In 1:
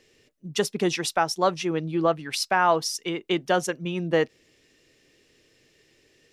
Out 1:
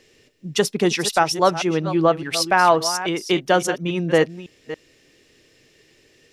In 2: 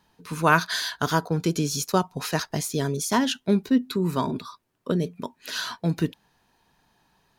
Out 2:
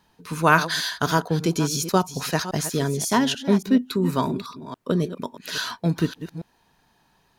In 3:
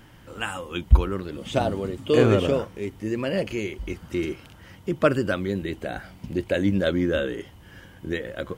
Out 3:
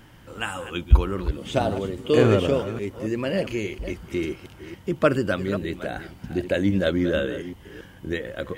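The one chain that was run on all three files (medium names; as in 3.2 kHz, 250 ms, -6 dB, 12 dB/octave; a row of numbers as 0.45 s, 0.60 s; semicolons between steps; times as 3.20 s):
chunks repeated in reverse 279 ms, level -12 dB; peak normalisation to -3 dBFS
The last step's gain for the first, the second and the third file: +5.5 dB, +2.0 dB, +0.5 dB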